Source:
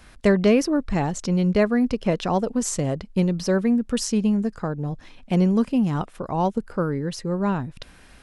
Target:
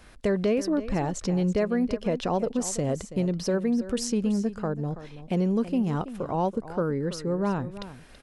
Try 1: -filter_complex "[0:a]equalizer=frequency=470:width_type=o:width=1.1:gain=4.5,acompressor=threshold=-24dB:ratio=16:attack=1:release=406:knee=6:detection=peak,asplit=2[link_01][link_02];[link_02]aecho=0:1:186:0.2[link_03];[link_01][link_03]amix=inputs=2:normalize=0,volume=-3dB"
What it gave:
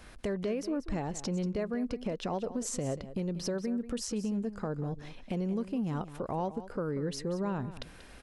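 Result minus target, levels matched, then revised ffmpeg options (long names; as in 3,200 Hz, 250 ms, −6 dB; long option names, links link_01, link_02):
downward compressor: peak gain reduction +9 dB; echo 143 ms early
-filter_complex "[0:a]equalizer=frequency=470:width_type=o:width=1.1:gain=4.5,acompressor=threshold=-14.5dB:ratio=16:attack=1:release=406:knee=6:detection=peak,asplit=2[link_01][link_02];[link_02]aecho=0:1:329:0.2[link_03];[link_01][link_03]amix=inputs=2:normalize=0,volume=-3dB"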